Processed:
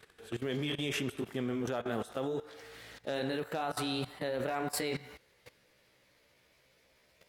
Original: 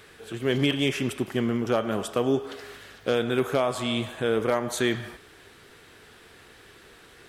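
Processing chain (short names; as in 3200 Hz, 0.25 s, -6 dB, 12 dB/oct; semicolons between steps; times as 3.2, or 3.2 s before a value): gliding pitch shift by +5 st starting unshifted; level quantiser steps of 17 dB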